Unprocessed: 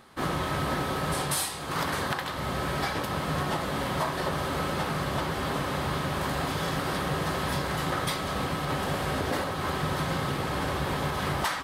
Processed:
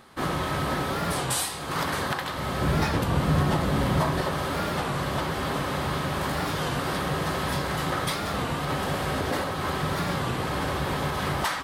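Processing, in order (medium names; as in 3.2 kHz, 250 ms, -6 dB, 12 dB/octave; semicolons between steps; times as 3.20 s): 2.61–4.21 s: bass shelf 290 Hz +10.5 dB; in parallel at -12 dB: saturation -25.5 dBFS, distortion -12 dB; on the sum: warped record 33 1/3 rpm, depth 160 cents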